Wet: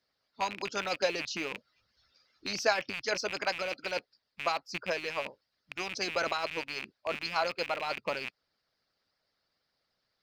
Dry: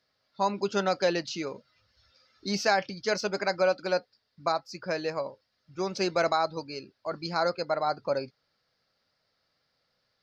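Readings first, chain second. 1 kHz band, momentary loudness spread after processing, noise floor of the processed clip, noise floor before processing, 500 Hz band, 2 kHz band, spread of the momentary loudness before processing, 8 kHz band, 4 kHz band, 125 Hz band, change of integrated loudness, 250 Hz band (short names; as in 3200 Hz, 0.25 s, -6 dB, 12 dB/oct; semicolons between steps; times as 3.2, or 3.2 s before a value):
-5.0 dB, 8 LU, -82 dBFS, -77 dBFS, -6.5 dB, +0.5 dB, 12 LU, n/a, -0.5 dB, -10.5 dB, -4.0 dB, -9.5 dB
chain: rattling part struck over -47 dBFS, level -22 dBFS; harmonic-percussive split harmonic -14 dB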